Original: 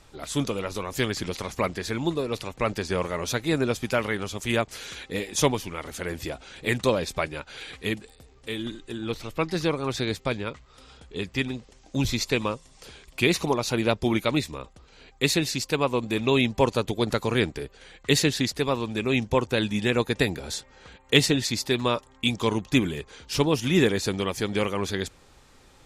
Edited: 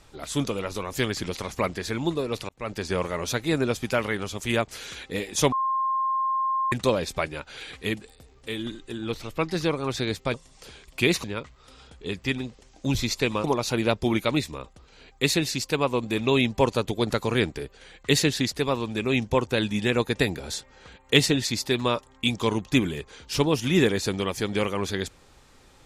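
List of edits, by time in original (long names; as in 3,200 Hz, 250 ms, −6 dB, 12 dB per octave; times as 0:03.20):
0:02.49–0:02.86: fade in
0:05.52–0:06.72: beep over 1,060 Hz −22 dBFS
0:12.54–0:13.44: move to 0:10.34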